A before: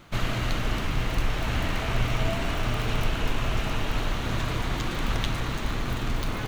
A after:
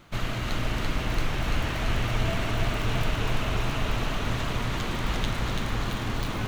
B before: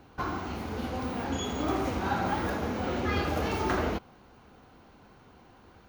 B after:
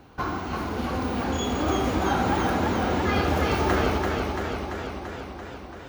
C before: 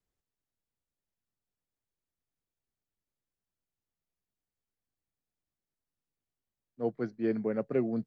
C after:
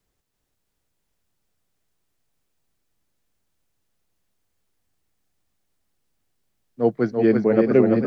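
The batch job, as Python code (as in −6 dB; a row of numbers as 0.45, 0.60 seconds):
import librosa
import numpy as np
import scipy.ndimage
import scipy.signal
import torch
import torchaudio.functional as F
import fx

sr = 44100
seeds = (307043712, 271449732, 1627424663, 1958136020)

y = fx.echo_warbled(x, sr, ms=337, feedback_pct=70, rate_hz=2.8, cents=53, wet_db=-4)
y = y * 10.0 ** (-26 / 20.0) / np.sqrt(np.mean(np.square(y)))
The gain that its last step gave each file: −2.5, +4.0, +12.5 decibels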